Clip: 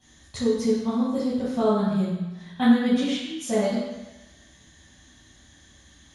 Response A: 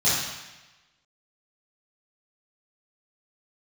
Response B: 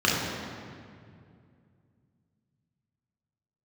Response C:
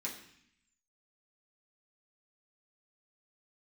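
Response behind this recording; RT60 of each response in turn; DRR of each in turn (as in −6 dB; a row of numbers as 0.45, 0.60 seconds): A; 1.1, 2.3, 0.65 seconds; −12.5, −5.5, −5.0 decibels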